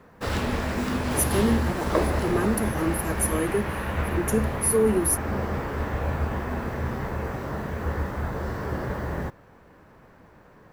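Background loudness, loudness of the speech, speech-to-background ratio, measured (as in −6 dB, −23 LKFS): −29.0 LKFS, −26.0 LKFS, 3.0 dB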